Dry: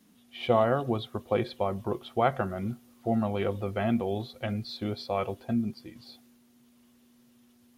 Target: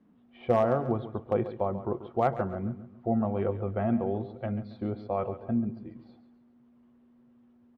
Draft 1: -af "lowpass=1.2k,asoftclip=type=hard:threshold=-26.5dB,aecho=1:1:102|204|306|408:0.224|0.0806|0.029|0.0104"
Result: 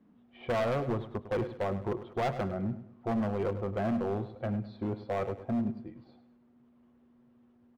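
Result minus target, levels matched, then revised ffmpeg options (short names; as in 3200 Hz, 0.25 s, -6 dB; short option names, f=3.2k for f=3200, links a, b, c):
hard clip: distortion +19 dB; echo 36 ms early
-af "lowpass=1.2k,asoftclip=type=hard:threshold=-15dB,aecho=1:1:138|276|414|552:0.224|0.0806|0.029|0.0104"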